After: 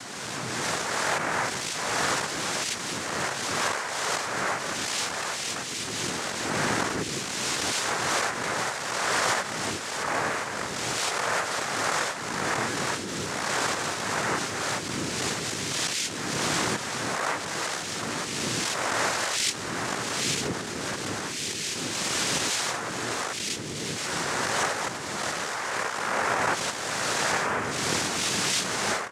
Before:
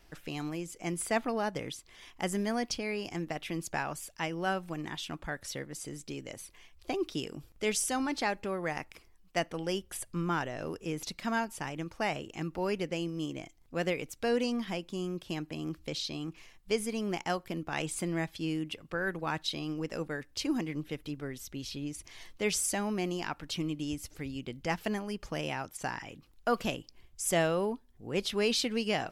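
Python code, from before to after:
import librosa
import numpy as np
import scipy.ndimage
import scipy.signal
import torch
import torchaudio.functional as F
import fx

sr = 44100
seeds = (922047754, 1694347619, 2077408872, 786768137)

y = fx.spec_swells(x, sr, rise_s=2.17)
y = fx.recorder_agc(y, sr, target_db=-14.5, rise_db_per_s=15.0, max_gain_db=30)
y = scipy.signal.sosfilt(scipy.signal.butter(2, 470.0, 'highpass', fs=sr, output='sos'), y)
y = fx.noise_vocoder(y, sr, seeds[0], bands=3)
y = fx.pre_swell(y, sr, db_per_s=26.0)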